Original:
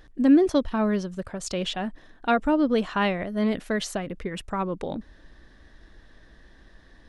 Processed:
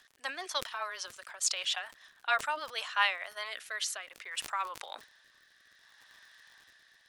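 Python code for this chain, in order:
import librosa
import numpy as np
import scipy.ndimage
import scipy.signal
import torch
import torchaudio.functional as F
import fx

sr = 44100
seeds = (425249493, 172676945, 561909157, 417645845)

y = scipy.signal.sosfilt(scipy.signal.cheby2(4, 80, 150.0, 'highpass', fs=sr, output='sos'), x)
y = fx.high_shelf(y, sr, hz=3000.0, db=7.5)
y = fx.dmg_crackle(y, sr, seeds[0], per_s=82.0, level_db=-45.0)
y = fx.rotary_switch(y, sr, hz=6.7, then_hz=0.6, switch_at_s=2.61)
y = fx.sustainer(y, sr, db_per_s=140.0)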